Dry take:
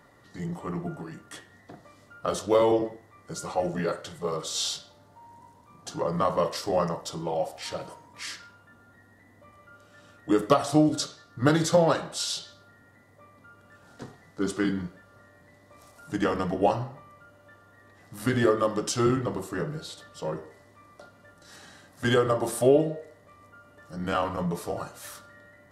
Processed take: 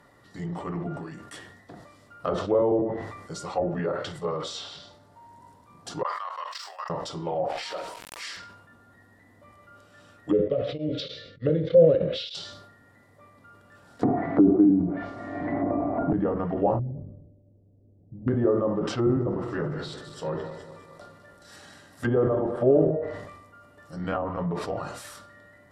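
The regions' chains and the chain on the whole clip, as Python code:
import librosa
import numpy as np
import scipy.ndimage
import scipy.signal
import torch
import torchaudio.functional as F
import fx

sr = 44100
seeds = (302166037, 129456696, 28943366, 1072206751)

y = fx.chain(x, sr, fx.highpass(hz=1000.0, slope=24),
    fx.level_steps(step_db=17),
    fx.resample_bad(factor=2, down='filtered', up='zero_stuff'), at=(6.03, 6.9))
y = fx.chain(y, sr, fx.highpass(hz=450.0, slope=12),
    fx.quant_dither(seeds[0], bits=8, dither='none'),
    fx.pre_swell(db_per_s=85.0), at=(7.48, 8.37))
y = fx.chain(y, sr, fx.curve_eq(hz=(130.0, 350.0, 520.0, 840.0, 1300.0, 2200.0, 3500.0, 12000.0), db=(0, -5, 10, -27, -13, 6, 8, -30)),
    fx.tremolo_abs(hz=3.3), at=(10.33, 12.35))
y = fx.chain(y, sr, fx.env_lowpass_down(base_hz=930.0, full_db=-27.5),
    fx.small_body(hz=(300.0, 690.0, 2200.0), ring_ms=40, db=15),
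    fx.band_squash(depth_pct=100), at=(14.03, 16.13))
y = fx.chain(y, sr, fx.gaussian_blur(sigma=20.0),
    fx.low_shelf(hz=130.0, db=6.0), at=(16.79, 18.28))
y = fx.chain(y, sr, fx.reverse_delay_fb(ms=103, feedback_pct=74, wet_db=-12),
    fx.sustainer(db_per_s=49.0), at=(18.86, 22.91))
y = fx.env_lowpass_down(y, sr, base_hz=700.0, full_db=-22.0)
y = fx.notch(y, sr, hz=6400.0, q=15.0)
y = fx.sustainer(y, sr, db_per_s=52.0)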